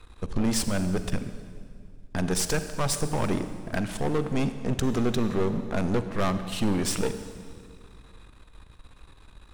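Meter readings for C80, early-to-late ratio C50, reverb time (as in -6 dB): 11.5 dB, 10.5 dB, 2.1 s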